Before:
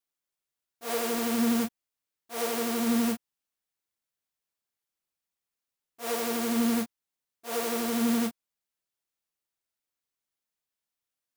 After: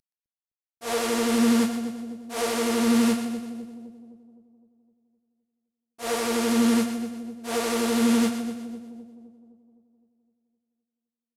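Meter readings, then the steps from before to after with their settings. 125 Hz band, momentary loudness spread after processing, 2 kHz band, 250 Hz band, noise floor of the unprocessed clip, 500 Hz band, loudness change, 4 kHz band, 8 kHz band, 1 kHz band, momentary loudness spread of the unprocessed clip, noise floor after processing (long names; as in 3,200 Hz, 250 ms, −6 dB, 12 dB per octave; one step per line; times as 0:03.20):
+6.0 dB, 17 LU, +5.0 dB, +6.0 dB, below −85 dBFS, +5.5 dB, +4.0 dB, +5.5 dB, +4.0 dB, +4.5 dB, 12 LU, below −85 dBFS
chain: variable-slope delta modulation 64 kbit/s
echo with a time of its own for lows and highs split 660 Hz, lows 257 ms, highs 123 ms, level −9 dB
level +4.5 dB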